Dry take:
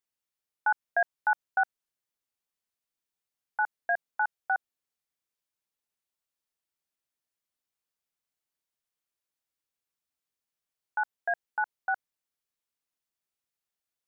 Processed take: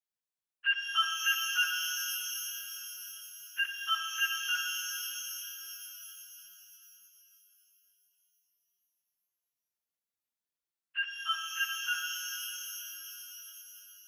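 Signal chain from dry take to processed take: frequency-domain pitch shifter +11 st; pitch-shifted reverb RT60 3.8 s, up +12 st, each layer -2 dB, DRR 4 dB

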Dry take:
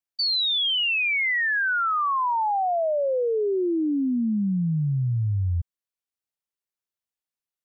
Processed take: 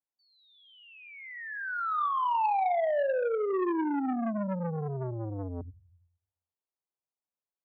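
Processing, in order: low-pass 1 kHz 24 dB/octave; tilt EQ +2.5 dB/octave; 2.07–3.53 s: feedback comb 290 Hz, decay 0.21 s, harmonics all, mix 30%; Schroeder reverb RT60 0.8 s, combs from 31 ms, DRR 10 dB; transformer saturation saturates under 780 Hz; trim +1.5 dB

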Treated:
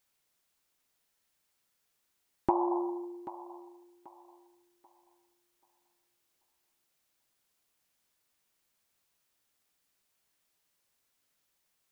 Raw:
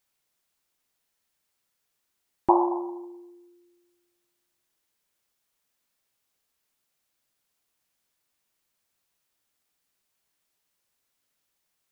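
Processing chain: compression 6:1, threshold -24 dBFS, peak gain reduction 10.5 dB; on a send: thinning echo 785 ms, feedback 32%, high-pass 250 Hz, level -14.5 dB

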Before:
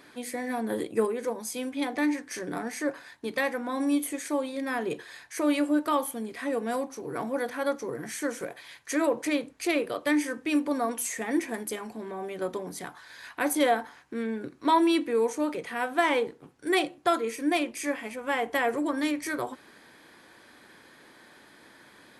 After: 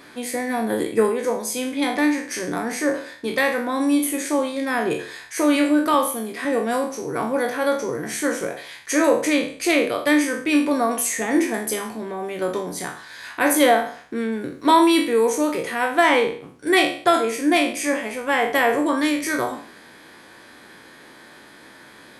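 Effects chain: spectral sustain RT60 0.48 s; 5.94–6.45 s: high-pass 190 Hz; 14.32–15.76 s: treble shelf 9.7 kHz +9.5 dB; trim +6.5 dB

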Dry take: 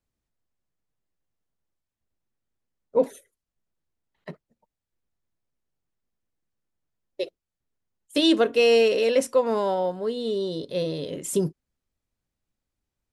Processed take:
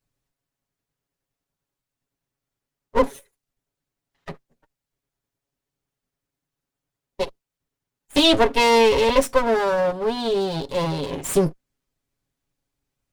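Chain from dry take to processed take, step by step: comb filter that takes the minimum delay 7.2 ms; trim +5.5 dB

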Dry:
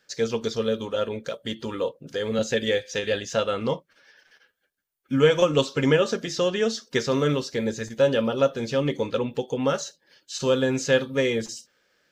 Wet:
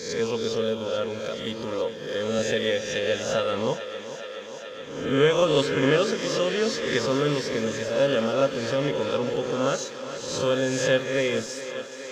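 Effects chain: reverse spectral sustain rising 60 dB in 0.80 s; thinning echo 423 ms, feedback 84%, high-pass 190 Hz, level -12.5 dB; trim -3 dB

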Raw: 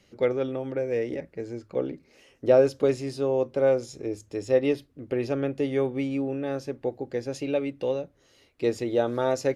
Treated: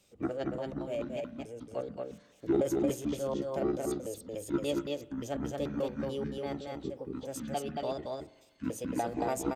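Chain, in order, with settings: pitch shift switched off and on -11 st, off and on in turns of 145 ms; treble shelf 4.2 kHz +11 dB; formant shift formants +4 st; delay 226 ms -3 dB; spring tank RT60 1.2 s, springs 41 ms, chirp 50 ms, DRR 18.5 dB; trim -8.5 dB

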